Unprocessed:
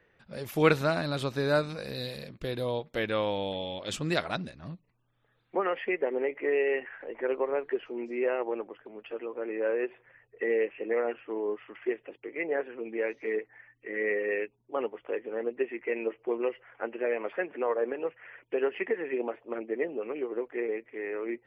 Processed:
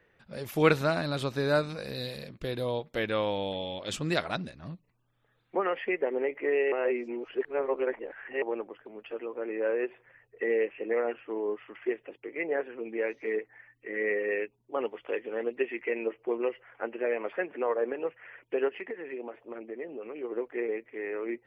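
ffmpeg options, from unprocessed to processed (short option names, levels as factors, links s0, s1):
-filter_complex "[0:a]asettb=1/sr,asplit=3[s0][s1][s2];[s0]atrim=end=14.854[s3];[s1]atrim=start=14.85:end=15.89,asetpts=PTS-STARTPTS,afade=t=in:d=0.004:c=qsin,afade=t=out:st=1.036:d=0.004:c=qsin,equalizer=f=3900:t=o:w=1.7:g=8.5[s4];[s2]atrim=start=15.886[s5];[s3][s4]acrossfade=d=0.004:c1=hsin:c2=qsin[s6];[s6][s5]acrossfade=d=0.004:c1=qsin:c2=hsin,asplit=3[s7][s8][s9];[s7]afade=t=out:st=18.68:d=0.02[s10];[s8]acompressor=threshold=0.01:ratio=2:attack=3.2:release=140:knee=1:detection=peak,afade=t=in:st=18.68:d=0.02,afade=t=out:st=20.23:d=0.02[s11];[s9]afade=t=in:st=20.23:d=0.02[s12];[s10][s11][s12]amix=inputs=3:normalize=0,asplit=3[s13][s14][s15];[s13]atrim=end=6.722[s16];[s14]atrim=start=6.718:end=8.422,asetpts=PTS-STARTPTS,areverse[s17];[s15]atrim=start=8.418[s18];[s16][s17]acrossfade=d=0.004:c1=hsin:c2=hsin[s19];[s19][s18]acrossfade=d=0.004:c1=hsin:c2=hsin"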